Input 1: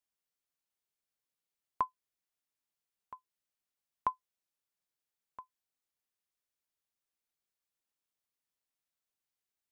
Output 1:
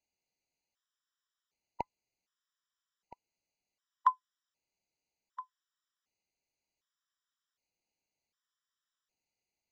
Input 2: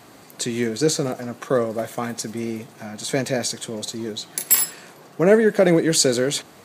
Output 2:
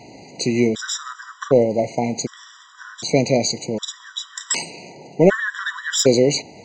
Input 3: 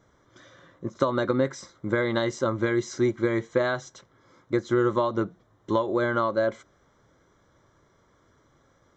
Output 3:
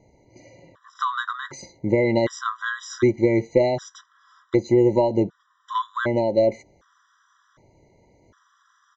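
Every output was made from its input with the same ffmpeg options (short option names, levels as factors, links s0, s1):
-af "aresample=16000,aresample=44100,aeval=exprs='(tanh(2*val(0)+0.1)-tanh(0.1))/2':c=same,afftfilt=real='re*gt(sin(2*PI*0.66*pts/sr)*(1-2*mod(floor(b*sr/1024/990),2)),0)':imag='im*gt(sin(2*PI*0.66*pts/sr)*(1-2*mod(floor(b*sr/1024/990),2)),0)':win_size=1024:overlap=0.75,volume=2.11"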